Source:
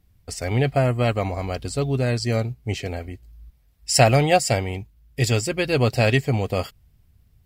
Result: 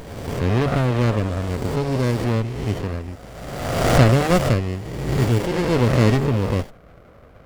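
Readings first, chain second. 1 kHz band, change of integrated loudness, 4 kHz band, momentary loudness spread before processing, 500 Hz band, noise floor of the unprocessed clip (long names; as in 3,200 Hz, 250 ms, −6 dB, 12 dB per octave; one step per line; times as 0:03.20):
0.0 dB, +1.5 dB, −2.5 dB, 16 LU, +0.5 dB, −59 dBFS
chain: peak hold with a rise ahead of every peak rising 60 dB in 1.49 s
noise in a band 440–870 Hz −45 dBFS
windowed peak hold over 33 samples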